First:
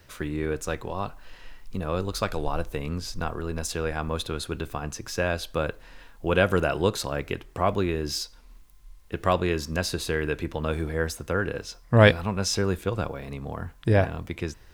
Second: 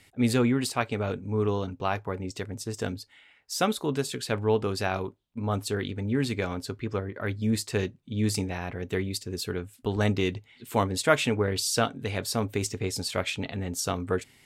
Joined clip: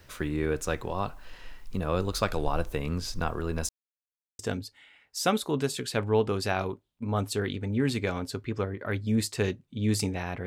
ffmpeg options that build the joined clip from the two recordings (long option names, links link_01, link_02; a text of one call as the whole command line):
ffmpeg -i cue0.wav -i cue1.wav -filter_complex "[0:a]apad=whole_dur=10.46,atrim=end=10.46,asplit=2[link_01][link_02];[link_01]atrim=end=3.69,asetpts=PTS-STARTPTS,afade=type=out:start_time=3.686:duration=0.004:curve=hsin[link_03];[link_02]atrim=start=3.69:end=4.39,asetpts=PTS-STARTPTS,volume=0[link_04];[1:a]atrim=start=2.74:end=8.81,asetpts=PTS-STARTPTS,afade=type=in:duration=0.004:curve=hsin[link_05];[link_03][link_04][link_05]concat=n=3:v=0:a=1" out.wav